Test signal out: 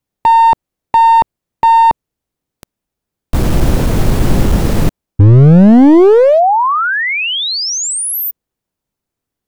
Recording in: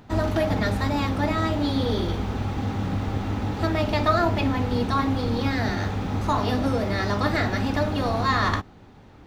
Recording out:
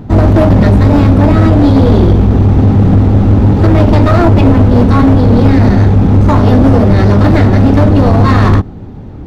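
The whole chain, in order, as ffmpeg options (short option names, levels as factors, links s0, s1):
-af "apsyclip=5.96,tiltshelf=f=660:g=9.5,aeval=exprs='clip(val(0),-1,0.596)':c=same,volume=0.891"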